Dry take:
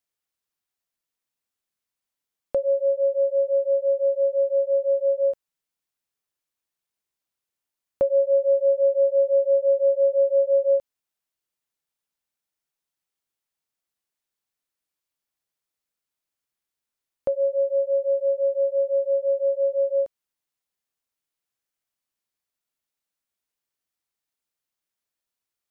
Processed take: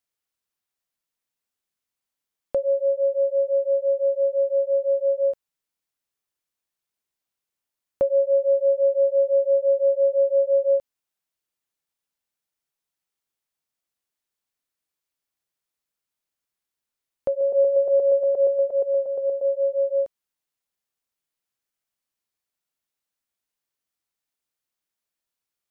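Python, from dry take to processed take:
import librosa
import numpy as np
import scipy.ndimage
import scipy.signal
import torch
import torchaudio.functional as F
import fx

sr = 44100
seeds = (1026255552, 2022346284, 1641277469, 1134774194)

y = fx.reverse_delay_fb(x, sr, ms=118, feedback_pct=45, wet_db=-4.5, at=(17.29, 19.45))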